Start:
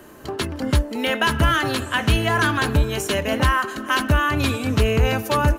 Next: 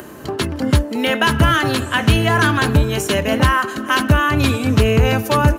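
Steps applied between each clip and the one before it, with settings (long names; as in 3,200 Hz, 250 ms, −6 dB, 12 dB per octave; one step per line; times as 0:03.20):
high-pass filter 100 Hz 12 dB per octave
low-shelf EQ 160 Hz +8 dB
upward compression, threshold −34 dBFS
level +3.5 dB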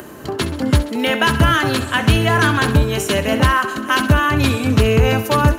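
feedback echo with a high-pass in the loop 66 ms, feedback 61%, level −13.5 dB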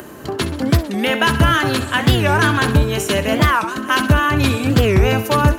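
wow of a warped record 45 rpm, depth 250 cents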